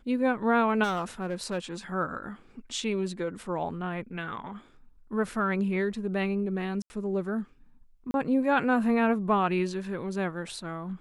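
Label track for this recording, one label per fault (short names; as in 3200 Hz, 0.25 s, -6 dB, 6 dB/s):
0.830000	1.580000	clipped -25 dBFS
6.820000	6.900000	gap 80 ms
8.110000	8.140000	gap 31 ms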